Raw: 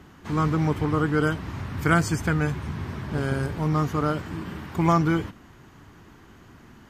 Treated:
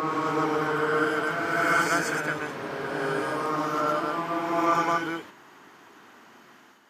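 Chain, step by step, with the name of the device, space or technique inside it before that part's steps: ghost voice (reverse; reverb RT60 3.1 s, pre-delay 0.102 s, DRR -6 dB; reverse; HPF 460 Hz 12 dB/oct); gain -3.5 dB

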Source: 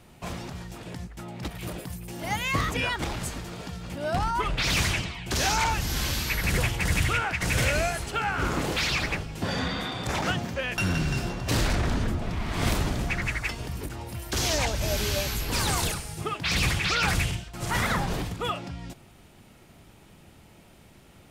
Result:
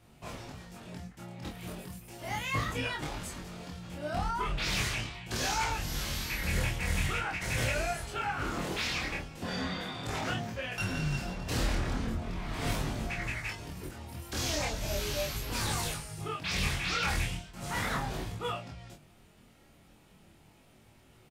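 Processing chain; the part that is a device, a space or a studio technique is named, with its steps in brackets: double-tracked vocal (doubler 27 ms -3.5 dB; chorus 0.38 Hz, delay 18.5 ms, depth 4.9 ms); gain -5 dB

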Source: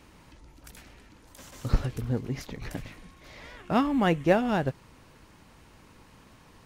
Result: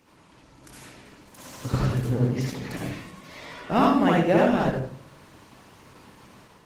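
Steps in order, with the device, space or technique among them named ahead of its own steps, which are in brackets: far-field microphone of a smart speaker (reverb RT60 0.55 s, pre-delay 55 ms, DRR -4 dB; HPF 110 Hz 12 dB/oct; AGC gain up to 6.5 dB; gain -4.5 dB; Opus 16 kbps 48000 Hz)

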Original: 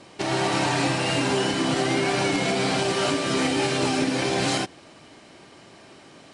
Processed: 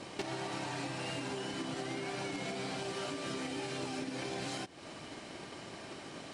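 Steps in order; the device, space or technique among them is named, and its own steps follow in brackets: drum-bus smash (transient shaper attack +7 dB, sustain +1 dB; compressor 16:1, threshold -36 dBFS, peak gain reduction 19.5 dB; soft clip -28.5 dBFS, distortion -24 dB); gain +1 dB

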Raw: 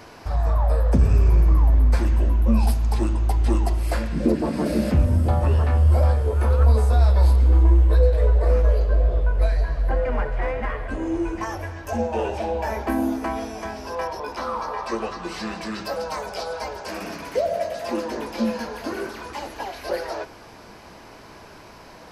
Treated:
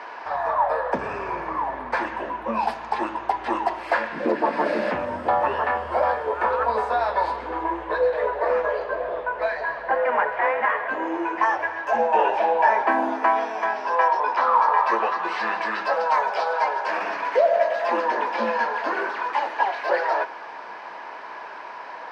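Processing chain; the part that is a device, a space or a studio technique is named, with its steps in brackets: tin-can telephone (BPF 670–2300 Hz; small resonant body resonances 940/1700 Hz, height 7 dB, ringing for 20 ms); gain +8.5 dB

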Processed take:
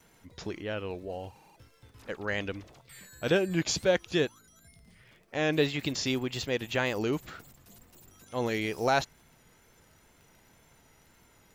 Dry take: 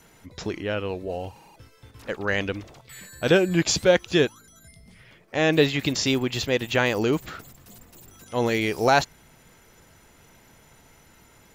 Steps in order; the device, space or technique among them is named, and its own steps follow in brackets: vinyl LP (wow and flutter; crackle 23/s -42 dBFS; pink noise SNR 44 dB); gain -7 dB

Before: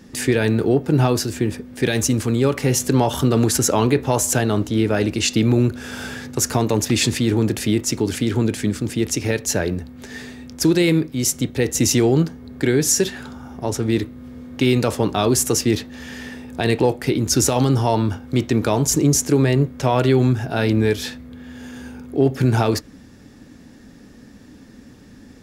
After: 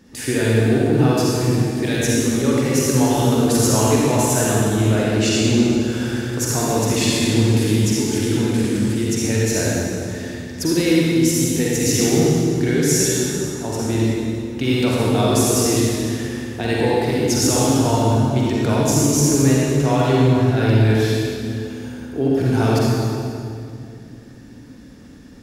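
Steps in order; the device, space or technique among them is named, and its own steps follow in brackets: stairwell (reverb RT60 2.4 s, pre-delay 41 ms, DRR -5.5 dB); gain -5.5 dB

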